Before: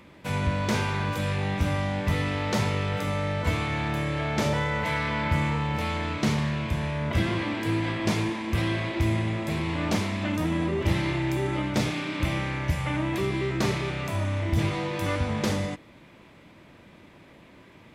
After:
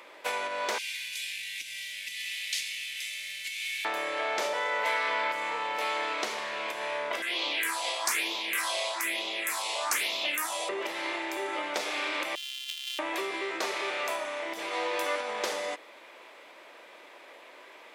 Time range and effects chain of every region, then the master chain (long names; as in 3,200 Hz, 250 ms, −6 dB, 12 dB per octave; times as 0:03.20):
0:00.78–0:03.85: variable-slope delta modulation 64 kbit/s + inverse Chebyshev band-stop filter 230–1,300 Hz
0:07.22–0:10.69: all-pass phaser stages 4, 1.1 Hz, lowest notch 260–1,700 Hz + spectral tilt +3.5 dB per octave
0:12.35–0:12.99: samples sorted by size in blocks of 128 samples + four-pole ladder high-pass 2,900 Hz, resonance 75%
whole clip: downward compressor, threshold −28 dBFS; high-pass filter 460 Hz 24 dB per octave; level +5 dB